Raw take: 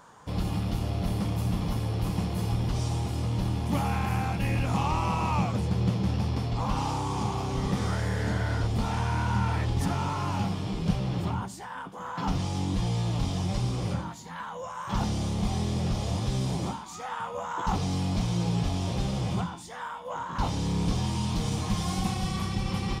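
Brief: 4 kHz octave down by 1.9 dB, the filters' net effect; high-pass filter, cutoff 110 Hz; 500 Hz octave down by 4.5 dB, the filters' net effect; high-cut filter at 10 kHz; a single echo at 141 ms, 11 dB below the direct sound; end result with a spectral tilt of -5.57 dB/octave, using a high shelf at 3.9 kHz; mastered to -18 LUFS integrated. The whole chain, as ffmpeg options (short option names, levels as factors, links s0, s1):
-af "highpass=110,lowpass=10000,equalizer=f=500:t=o:g=-6,highshelf=f=3900:g=4,equalizer=f=4000:t=o:g=-5,aecho=1:1:141:0.282,volume=5.01"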